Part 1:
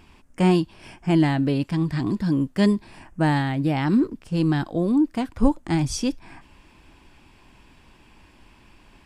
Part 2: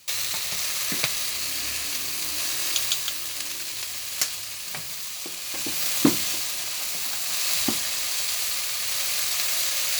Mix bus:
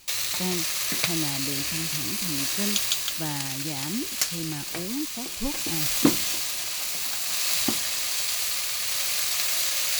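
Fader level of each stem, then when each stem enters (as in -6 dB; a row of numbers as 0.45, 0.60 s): -12.5, -0.5 dB; 0.00, 0.00 s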